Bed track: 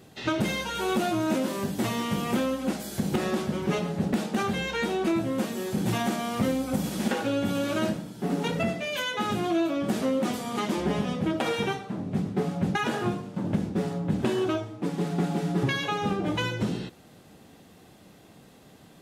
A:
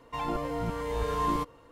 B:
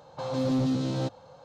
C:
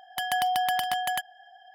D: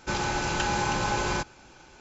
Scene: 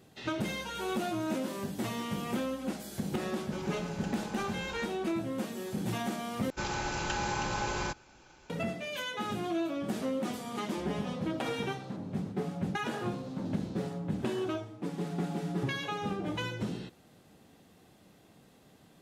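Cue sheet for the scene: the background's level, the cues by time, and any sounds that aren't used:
bed track -7 dB
3.44 s: add D -18 dB
6.50 s: replace with D -6 dB
10.88 s: add B -5 dB + compression, threshold -39 dBFS
12.79 s: add B -16 dB
not used: A, C

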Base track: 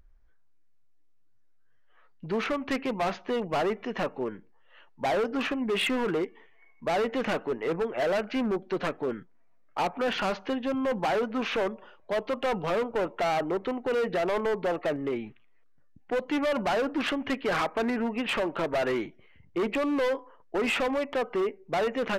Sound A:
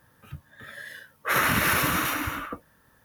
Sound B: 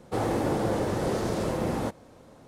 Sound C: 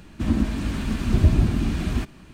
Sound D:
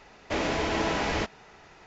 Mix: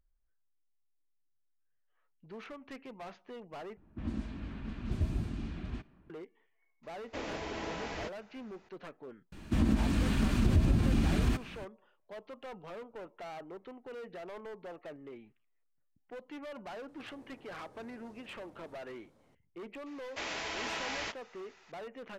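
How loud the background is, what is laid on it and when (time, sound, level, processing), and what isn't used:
base track -17.5 dB
3.77 s: replace with C -15.5 dB + level-controlled noise filter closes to 1 kHz, open at -13.5 dBFS
6.83 s: add D -12 dB
9.32 s: add C -2.5 dB + compression 3:1, threshold -20 dBFS
16.88 s: add B -15.5 dB + compression 12:1, threshold -40 dBFS
19.86 s: add D -12 dB + tilt shelf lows -8 dB, about 740 Hz
not used: A

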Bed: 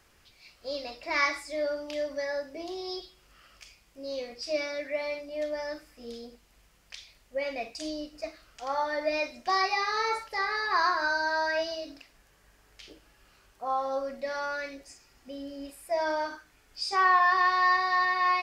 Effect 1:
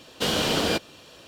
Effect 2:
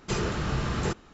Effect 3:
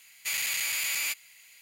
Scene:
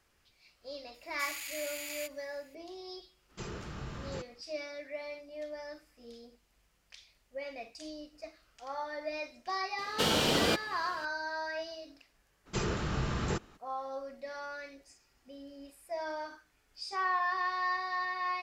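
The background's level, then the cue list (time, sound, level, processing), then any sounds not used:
bed -9 dB
0.94 s: add 3 -12 dB
3.29 s: add 2 -13.5 dB
9.78 s: add 1 -4 dB
12.45 s: add 2 -4.5 dB, fades 0.02 s

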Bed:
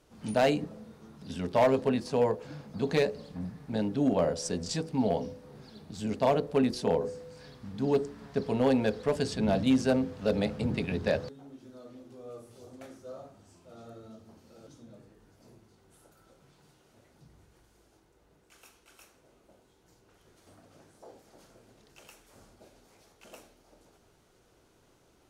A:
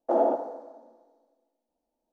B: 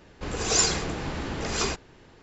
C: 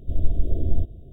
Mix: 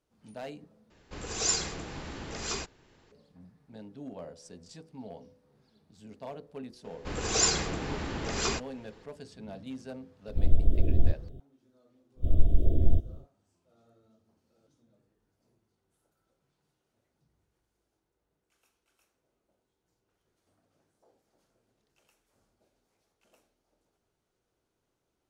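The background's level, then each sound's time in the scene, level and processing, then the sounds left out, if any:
bed -16.5 dB
0.90 s: replace with B -9 dB + treble shelf 4 kHz +5 dB
6.84 s: add B -3 dB
10.28 s: add C -1.5 dB
12.15 s: add C -1 dB, fades 0.10 s
not used: A

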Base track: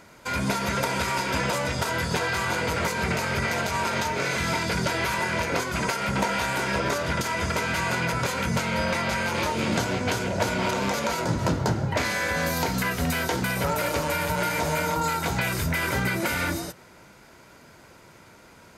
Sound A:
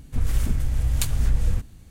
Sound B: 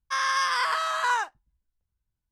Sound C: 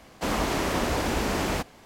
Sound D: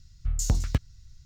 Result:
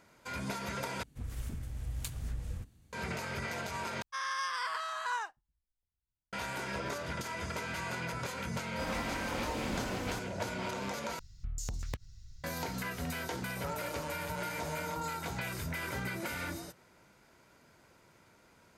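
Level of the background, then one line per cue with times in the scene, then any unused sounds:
base track -12 dB
1.03 s: replace with A -13.5 dB + high-pass 50 Hz
4.02 s: replace with B -10.5 dB
8.57 s: add C -16 dB + comb 3.9 ms, depth 89%
11.19 s: replace with D -1.5 dB + compression 12:1, threshold -32 dBFS

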